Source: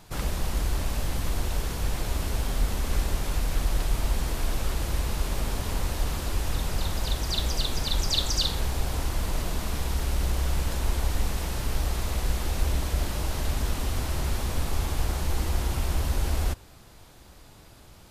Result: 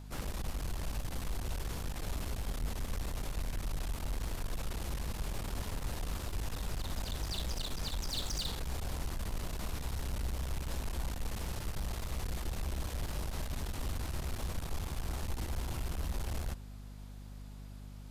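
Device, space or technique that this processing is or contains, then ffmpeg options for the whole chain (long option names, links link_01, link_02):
valve amplifier with mains hum: -af "aeval=exprs='(tanh(20*val(0)+0.4)-tanh(0.4))/20':channel_layout=same,aeval=exprs='val(0)+0.01*(sin(2*PI*50*n/s)+sin(2*PI*2*50*n/s)/2+sin(2*PI*3*50*n/s)/3+sin(2*PI*4*50*n/s)/4+sin(2*PI*5*50*n/s)/5)':channel_layout=same,volume=-6dB"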